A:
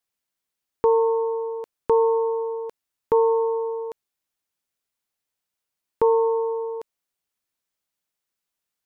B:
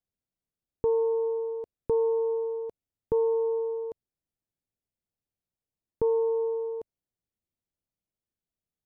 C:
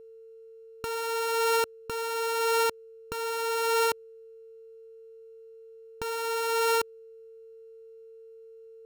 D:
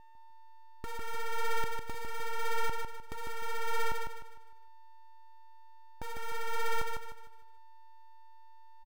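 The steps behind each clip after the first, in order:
drawn EQ curve 100 Hz 0 dB, 680 Hz −12 dB, 1,100 Hz −22 dB; in parallel at +1 dB: brickwall limiter −30 dBFS, peak gain reduction 10 dB
samples sorted by size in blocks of 32 samples; compressor whose output falls as the input rises −33 dBFS, ratio −1; steady tone 450 Hz −51 dBFS; level +4.5 dB
full-wave rectification; on a send: repeating echo 152 ms, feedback 36%, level −4.5 dB; on the sum: level −4 dB

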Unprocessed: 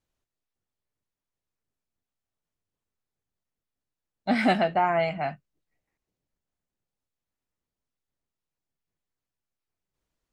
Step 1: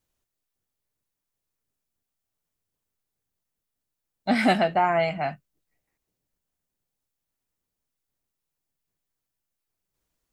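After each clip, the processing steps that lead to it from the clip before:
high-shelf EQ 7,600 Hz +9.5 dB
level +1.5 dB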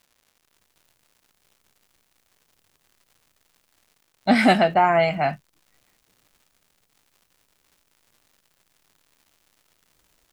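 automatic gain control gain up to 14.5 dB
surface crackle 240 per second −45 dBFS
level −2 dB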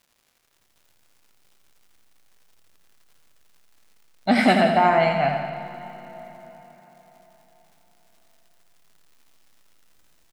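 repeating echo 84 ms, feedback 58%, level −7 dB
convolution reverb RT60 4.3 s, pre-delay 30 ms, DRR 12 dB
level −1.5 dB

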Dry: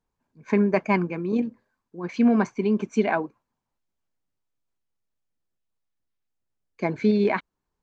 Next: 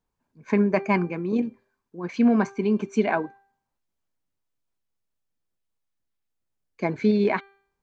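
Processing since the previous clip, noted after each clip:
hum removal 394.9 Hz, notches 11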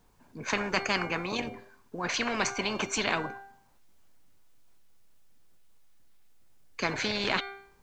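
tuned comb filter 720 Hz, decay 0.41 s, mix 60%
every bin compressed towards the loudest bin 4 to 1
level +4.5 dB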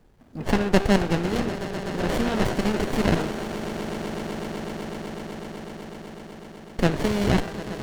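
echo that builds up and dies away 125 ms, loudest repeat 8, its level −15 dB
windowed peak hold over 33 samples
level +8.5 dB

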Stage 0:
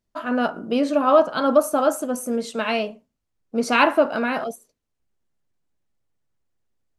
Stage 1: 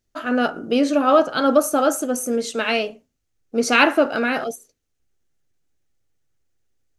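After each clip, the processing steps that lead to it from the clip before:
thirty-one-band graphic EQ 200 Hz −10 dB, 630 Hz −5 dB, 1,000 Hz −10 dB, 6,300 Hz +5 dB
level +4.5 dB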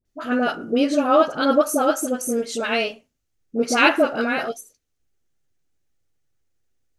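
all-pass dispersion highs, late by 54 ms, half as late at 870 Hz
level −1 dB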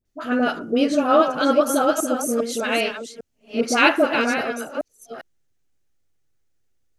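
delay that plays each chunk backwards 401 ms, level −8 dB

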